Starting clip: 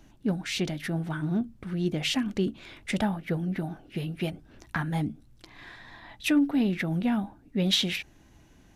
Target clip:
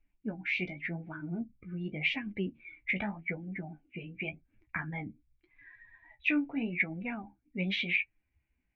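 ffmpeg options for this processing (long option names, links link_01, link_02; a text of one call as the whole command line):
ffmpeg -i in.wav -af "afftdn=noise_reduction=21:noise_floor=-39,flanger=delay=9.5:depth=7.3:regen=33:speed=0.86:shape=sinusoidal,lowpass=frequency=2300:width_type=q:width=9.3,volume=-6dB" out.wav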